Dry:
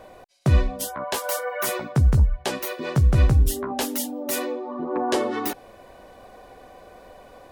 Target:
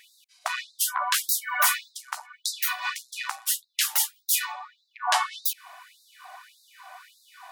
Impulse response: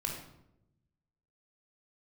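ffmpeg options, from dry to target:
-af "acontrast=74,lowshelf=frequency=670:width_type=q:width=1.5:gain=-10,afftfilt=real='re*gte(b*sr/1024,600*pow(3700/600,0.5+0.5*sin(2*PI*1.7*pts/sr)))':imag='im*gte(b*sr/1024,600*pow(3700/600,0.5+0.5*sin(2*PI*1.7*pts/sr)))':win_size=1024:overlap=0.75,volume=-1dB"

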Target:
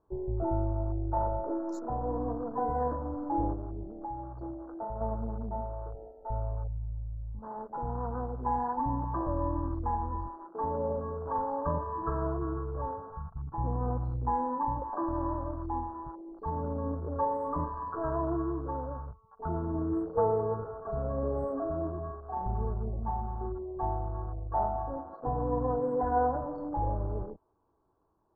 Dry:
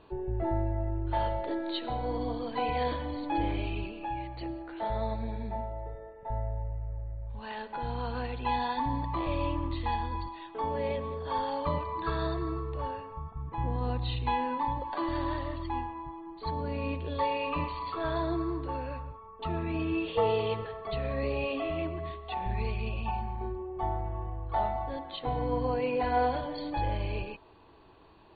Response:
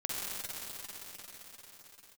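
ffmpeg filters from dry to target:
-filter_complex "[0:a]afwtdn=0.0112,asettb=1/sr,asplit=3[link_01][link_02][link_03];[link_01]atrim=end=3.534[link_04];[link_02]atrim=start=3.53:end=5.01,asetpts=PTS-STARTPTS,afade=type=in:duration=0.004:curve=qsin,afade=type=out:start_time=1.476:duration=0.004:curve=qsin,acompressor=threshold=-36dB:ratio=2.5[link_05];[link_03]atrim=start=5.006[link_06];[link_04][link_05]acrossfade=duration=0.004:curve1=hsin:curve2=qsin[link_07];[link_07][link_06]acrossfade=duration=0.004:curve1=qsin:curve2=hsin,asuperstop=centerf=2900:order=8:qfactor=0.67"

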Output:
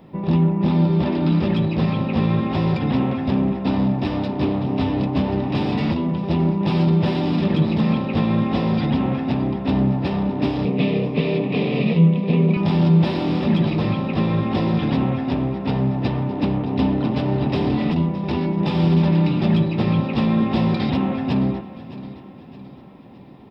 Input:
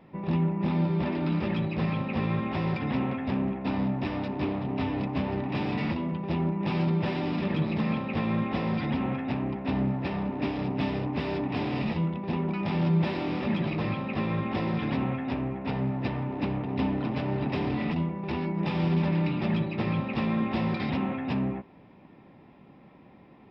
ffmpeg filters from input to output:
ffmpeg -i in.wav -filter_complex "[0:a]tiltshelf=frequency=1300:gain=4.5,aexciter=amount=2.8:drive=5.7:freq=3100,asettb=1/sr,asplit=3[link_01][link_02][link_03];[link_01]atrim=end=10.654[link_04];[link_02]atrim=start=10.65:end=12.57,asetpts=PTS-STARTPTS,afade=type=in:duration=0.004:curve=qsin,afade=type=out:start_time=1.916:duration=0.004:curve=qsin,highpass=frequency=130:width=0.5412,highpass=frequency=130:width=1.3066,equalizer=frequency=170:width_type=q:width=4:gain=7,equalizer=frequency=310:width_type=q:width=4:gain=-6,equalizer=frequency=460:width_type=q:width=4:gain=10,equalizer=frequency=860:width_type=q:width=4:gain=-9,equalizer=frequency=1500:width_type=q:width=4:gain=-10,equalizer=frequency=2400:width_type=q:width=4:gain=9,lowpass=frequency=4200:width=0.5412,lowpass=frequency=4200:width=1.3066[link_05];[link_03]atrim=start=12.566[link_06];[link_04][link_05]acrossfade=duration=0.004:curve1=hsin:curve2=qsin[link_07];[link_07][link_06]acrossfade=duration=0.004:curve1=qsin:curve2=hsin,aecho=1:1:616|1232|1848|2464:0.158|0.0745|0.035|0.0165,volume=4.5dB" out.wav

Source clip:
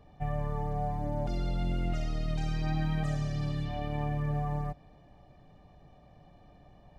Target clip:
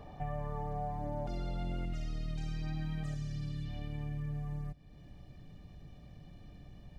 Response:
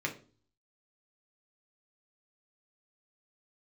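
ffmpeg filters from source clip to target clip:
-af "asetnsamples=nb_out_samples=441:pad=0,asendcmd='1.85 equalizer g -7.5;3.14 equalizer g -14.5',equalizer=frequency=810:width=0.73:gain=3,acompressor=threshold=-53dB:ratio=2,volume=7dB"

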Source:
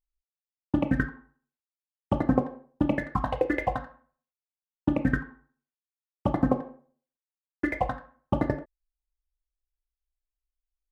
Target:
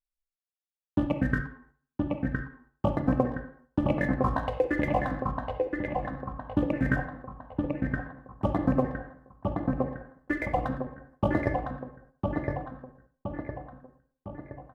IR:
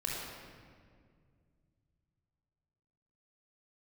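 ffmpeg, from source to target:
-filter_complex "[0:a]asplit=2[link_01][link_02];[link_02]adelay=748,lowpass=frequency=2900:poles=1,volume=-3dB,asplit=2[link_03][link_04];[link_04]adelay=748,lowpass=frequency=2900:poles=1,volume=0.51,asplit=2[link_05][link_06];[link_06]adelay=748,lowpass=frequency=2900:poles=1,volume=0.51,asplit=2[link_07][link_08];[link_08]adelay=748,lowpass=frequency=2900:poles=1,volume=0.51,asplit=2[link_09][link_10];[link_10]adelay=748,lowpass=frequency=2900:poles=1,volume=0.51,asplit=2[link_11][link_12];[link_12]adelay=748,lowpass=frequency=2900:poles=1,volume=0.51,asplit=2[link_13][link_14];[link_14]adelay=748,lowpass=frequency=2900:poles=1,volume=0.51[link_15];[link_01][link_03][link_05][link_07][link_09][link_11][link_13][link_15]amix=inputs=8:normalize=0,atempo=0.74,agate=range=-7dB:threshold=-57dB:ratio=16:detection=peak,asplit=2[link_16][link_17];[1:a]atrim=start_sample=2205,atrim=end_sample=4410[link_18];[link_17][link_18]afir=irnorm=-1:irlink=0,volume=-10dB[link_19];[link_16][link_19]amix=inputs=2:normalize=0,volume=-3dB"

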